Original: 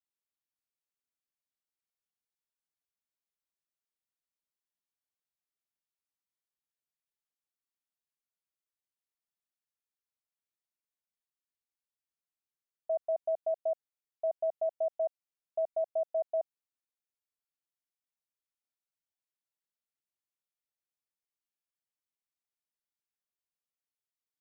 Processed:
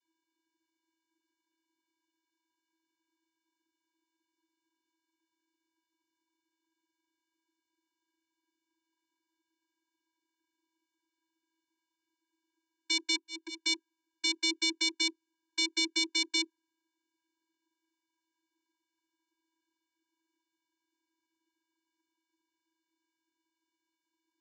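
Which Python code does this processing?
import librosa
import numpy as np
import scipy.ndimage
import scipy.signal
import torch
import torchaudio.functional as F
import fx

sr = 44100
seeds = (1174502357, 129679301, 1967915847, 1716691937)

y = fx.halfwave_hold(x, sr)
y = fx.auto_swell(y, sr, attack_ms=214.0, at=(13.15, 13.56))
y = fx.vocoder(y, sr, bands=32, carrier='square', carrier_hz=325.0)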